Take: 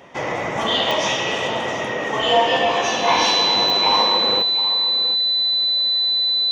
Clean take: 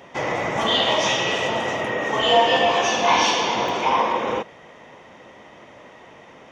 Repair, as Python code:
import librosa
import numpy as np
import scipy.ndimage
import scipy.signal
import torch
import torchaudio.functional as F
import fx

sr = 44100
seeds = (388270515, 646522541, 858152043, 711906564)

y = fx.fix_declick_ar(x, sr, threshold=10.0)
y = fx.notch(y, sr, hz=4000.0, q=30.0)
y = fx.fix_echo_inverse(y, sr, delay_ms=722, level_db=-13.5)